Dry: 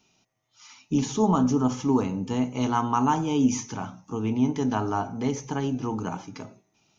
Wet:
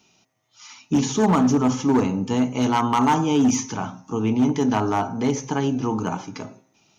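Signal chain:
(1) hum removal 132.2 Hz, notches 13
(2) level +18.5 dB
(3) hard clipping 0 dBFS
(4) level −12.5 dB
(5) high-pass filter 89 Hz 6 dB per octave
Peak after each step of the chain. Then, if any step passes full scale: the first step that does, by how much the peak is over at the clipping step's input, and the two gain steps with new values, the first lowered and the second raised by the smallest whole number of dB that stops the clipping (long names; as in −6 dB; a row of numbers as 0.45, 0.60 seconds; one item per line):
−10.5, +8.0, 0.0, −12.5, −9.5 dBFS
step 2, 8.0 dB
step 2 +10.5 dB, step 4 −4.5 dB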